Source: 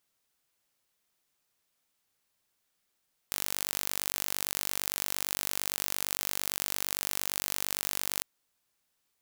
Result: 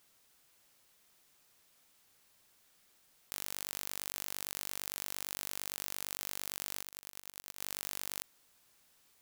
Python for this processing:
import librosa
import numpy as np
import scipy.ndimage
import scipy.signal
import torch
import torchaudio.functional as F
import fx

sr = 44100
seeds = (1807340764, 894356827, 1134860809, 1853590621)

p1 = fx.over_compress(x, sr, threshold_db=-48.0, ratio=-1.0)
p2 = x + (p1 * librosa.db_to_amplitude(0.5))
p3 = fx.leveller(p2, sr, passes=2)
p4 = fx.auto_swell(p3, sr, attack_ms=341.0, at=(6.81, 7.6), fade=0.02)
p5 = 10.0 ** (-11.0 / 20.0) * np.tanh(p4 / 10.0 ** (-11.0 / 20.0))
y = p5 * librosa.db_to_amplitude(-1.0)